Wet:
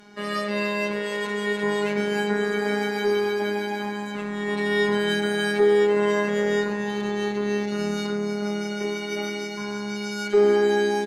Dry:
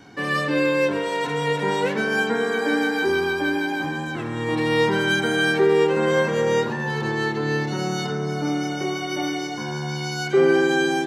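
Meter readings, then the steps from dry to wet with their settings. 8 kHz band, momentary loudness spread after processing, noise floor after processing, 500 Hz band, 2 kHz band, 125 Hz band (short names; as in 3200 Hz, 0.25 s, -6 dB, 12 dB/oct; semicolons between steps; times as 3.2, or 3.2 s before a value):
-3.0 dB, 10 LU, -31 dBFS, -0.5 dB, -4.5 dB, -7.0 dB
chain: robotiser 206 Hz; echo 0.281 s -12 dB; added harmonics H 6 -35 dB, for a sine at -7 dBFS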